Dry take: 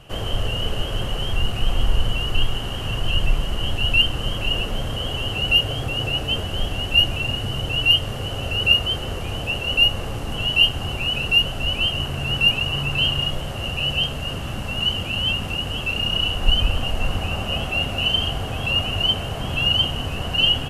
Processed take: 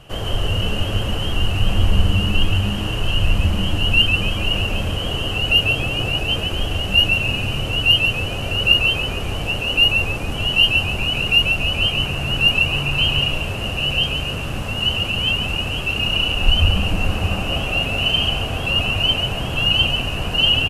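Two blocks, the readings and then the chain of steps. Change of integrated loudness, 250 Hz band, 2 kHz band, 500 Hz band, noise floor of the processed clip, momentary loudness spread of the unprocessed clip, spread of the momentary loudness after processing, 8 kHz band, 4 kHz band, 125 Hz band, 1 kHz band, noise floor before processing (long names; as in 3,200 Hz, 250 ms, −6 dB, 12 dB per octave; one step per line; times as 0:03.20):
+3.0 dB, +4.5 dB, +4.0 dB, +3.0 dB, −25 dBFS, 10 LU, 8 LU, +3.0 dB, +2.0 dB, +4.0 dB, +2.5 dB, −29 dBFS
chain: echo with shifted repeats 141 ms, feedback 38%, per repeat −110 Hz, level −5 dB
level +1.5 dB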